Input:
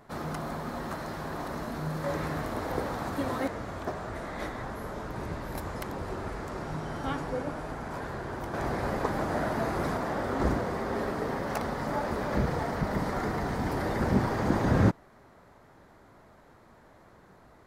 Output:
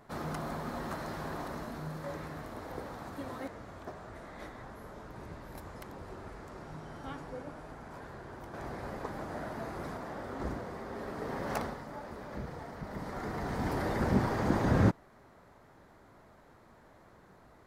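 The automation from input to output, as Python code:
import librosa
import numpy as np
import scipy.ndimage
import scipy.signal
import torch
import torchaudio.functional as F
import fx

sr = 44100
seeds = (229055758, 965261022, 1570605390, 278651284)

y = fx.gain(x, sr, db=fx.line((1.28, -2.5), (2.29, -10.0), (10.98, -10.0), (11.58, -2.0), (11.85, -13.0), (12.78, -13.0), (13.65, -2.5)))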